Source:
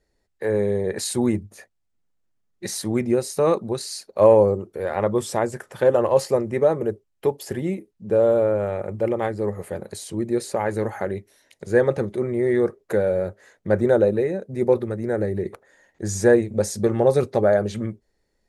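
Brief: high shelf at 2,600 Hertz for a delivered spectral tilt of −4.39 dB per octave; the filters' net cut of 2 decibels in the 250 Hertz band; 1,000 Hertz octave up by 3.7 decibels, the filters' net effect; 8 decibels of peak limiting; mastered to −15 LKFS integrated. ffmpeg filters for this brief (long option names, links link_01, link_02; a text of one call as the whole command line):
ffmpeg -i in.wav -af "equalizer=frequency=250:width_type=o:gain=-3.5,equalizer=frequency=1000:width_type=o:gain=4,highshelf=frequency=2600:gain=7.5,volume=8.5dB,alimiter=limit=-2dB:level=0:latency=1" out.wav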